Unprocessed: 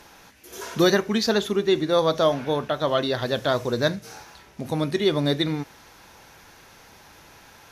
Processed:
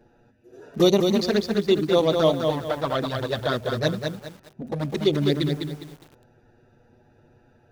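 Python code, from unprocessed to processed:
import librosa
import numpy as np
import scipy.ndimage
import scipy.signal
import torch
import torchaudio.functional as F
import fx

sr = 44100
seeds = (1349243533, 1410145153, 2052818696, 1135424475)

y = fx.wiener(x, sr, points=41)
y = fx.env_flanger(y, sr, rest_ms=8.7, full_db=-16.5)
y = fx.echo_crushed(y, sr, ms=204, feedback_pct=35, bits=8, wet_db=-5)
y = y * librosa.db_to_amplitude(2.5)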